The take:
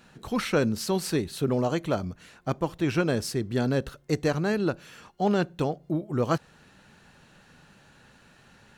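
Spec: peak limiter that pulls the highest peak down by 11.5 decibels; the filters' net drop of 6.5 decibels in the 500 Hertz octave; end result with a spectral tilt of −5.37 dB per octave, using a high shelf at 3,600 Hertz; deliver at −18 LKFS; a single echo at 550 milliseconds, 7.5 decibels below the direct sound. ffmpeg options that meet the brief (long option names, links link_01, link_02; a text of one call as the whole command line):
ffmpeg -i in.wav -af "equalizer=frequency=500:width_type=o:gain=-8.5,highshelf=frequency=3600:gain=-4,alimiter=level_in=1dB:limit=-24dB:level=0:latency=1,volume=-1dB,aecho=1:1:550:0.422,volume=17.5dB" out.wav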